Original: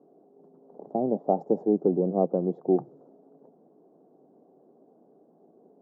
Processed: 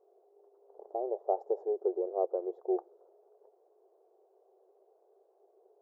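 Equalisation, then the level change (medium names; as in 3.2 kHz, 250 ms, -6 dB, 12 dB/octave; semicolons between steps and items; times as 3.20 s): brick-wall FIR high-pass 350 Hz; -5.5 dB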